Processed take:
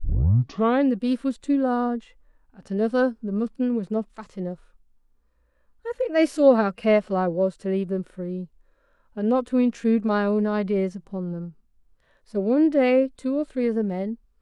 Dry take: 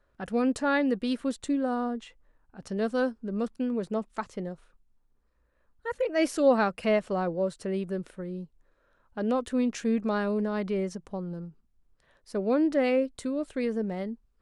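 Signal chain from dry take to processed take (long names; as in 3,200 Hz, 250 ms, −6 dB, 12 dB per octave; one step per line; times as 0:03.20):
turntable start at the beginning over 0.82 s
harmonic and percussive parts rebalanced percussive −13 dB
level +6 dB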